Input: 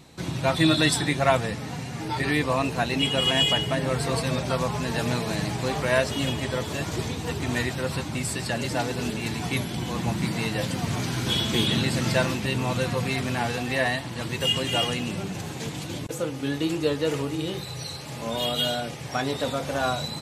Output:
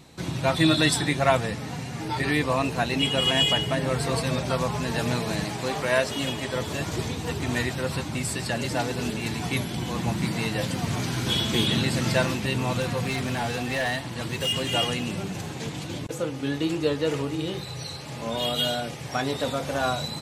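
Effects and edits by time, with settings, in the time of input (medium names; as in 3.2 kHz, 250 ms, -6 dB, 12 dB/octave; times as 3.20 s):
5.43–6.56 s: bass shelf 120 Hz -11 dB
12.80–14.74 s: overload inside the chain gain 22 dB
15.46–18.45 s: treble shelf 10 kHz -7.5 dB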